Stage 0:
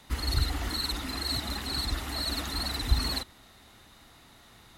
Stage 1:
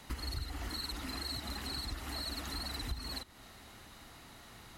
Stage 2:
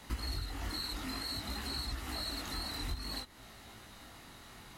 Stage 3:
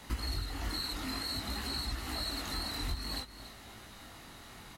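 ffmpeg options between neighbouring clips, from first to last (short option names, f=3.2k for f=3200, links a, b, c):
-af "bandreject=f=3.6k:w=13,acompressor=threshold=-40dB:ratio=4,volume=1.5dB"
-af "flanger=delay=17.5:depth=6.1:speed=0.55,volume=4dB"
-af "aecho=1:1:285:0.2,volume=2dB"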